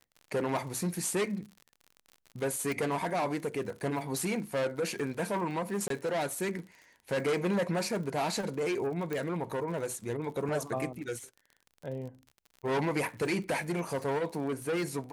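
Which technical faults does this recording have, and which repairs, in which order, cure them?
surface crackle 57 per second −41 dBFS
0:02.72: click
0:05.88–0:05.90: drop-out 23 ms
0:09.13: click −21 dBFS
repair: click removal
repair the gap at 0:05.88, 23 ms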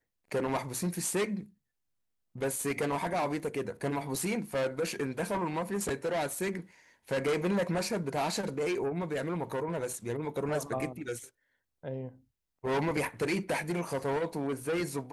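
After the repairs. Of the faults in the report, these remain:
0:02.72: click
0:09.13: click

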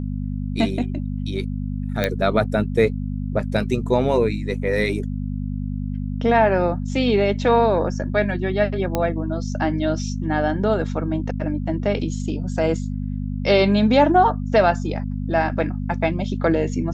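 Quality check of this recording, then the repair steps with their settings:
mains hum 50 Hz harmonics 5 −26 dBFS
0:02.04: click −7 dBFS
0:08.95: click −8 dBFS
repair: click removal
hum removal 50 Hz, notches 5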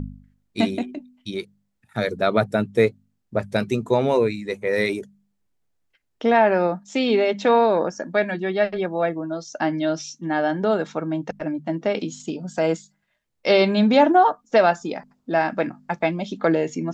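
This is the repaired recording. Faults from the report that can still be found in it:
none of them is left

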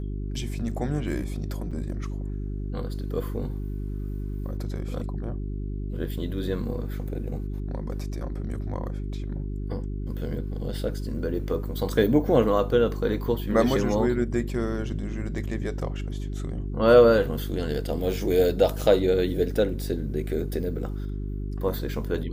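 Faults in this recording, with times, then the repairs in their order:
mains hum 50 Hz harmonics 8 −31 dBFS
0:01.71–0:01.72: drop-out 5.9 ms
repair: hum removal 50 Hz, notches 8
repair the gap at 0:01.71, 5.9 ms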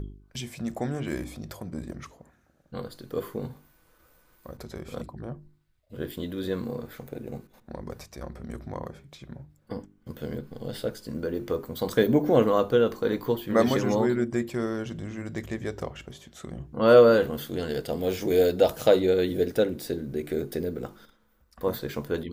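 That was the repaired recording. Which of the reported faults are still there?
none of them is left

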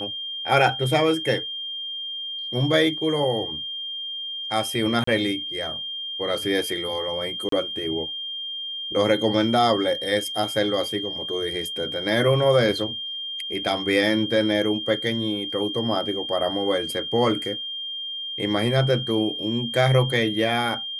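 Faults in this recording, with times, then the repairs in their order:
whistle 3,200 Hz −29 dBFS
0:05.04–0:05.07: drop-out 34 ms
0:07.49–0:07.52: drop-out 33 ms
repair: notch filter 3,200 Hz, Q 30
repair the gap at 0:05.04, 34 ms
repair the gap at 0:07.49, 33 ms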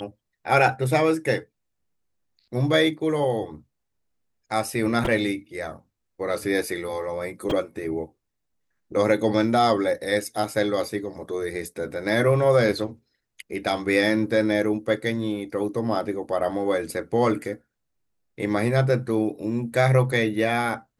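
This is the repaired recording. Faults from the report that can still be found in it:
none of them is left

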